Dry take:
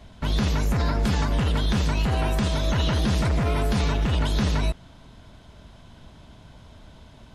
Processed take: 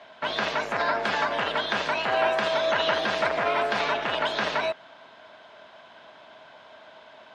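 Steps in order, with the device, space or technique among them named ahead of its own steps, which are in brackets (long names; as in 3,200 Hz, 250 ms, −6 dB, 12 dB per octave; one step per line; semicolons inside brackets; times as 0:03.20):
tin-can telephone (band-pass filter 670–3,000 Hz; hollow resonant body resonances 630/1,600 Hz, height 7 dB)
level +7 dB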